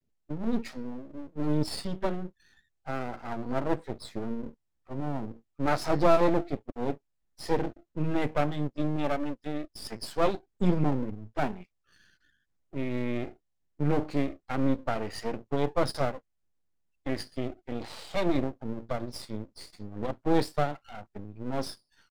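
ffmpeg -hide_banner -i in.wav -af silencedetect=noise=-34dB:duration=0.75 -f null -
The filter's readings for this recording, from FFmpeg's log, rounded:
silence_start: 11.61
silence_end: 12.74 | silence_duration: 1.14
silence_start: 16.17
silence_end: 17.06 | silence_duration: 0.89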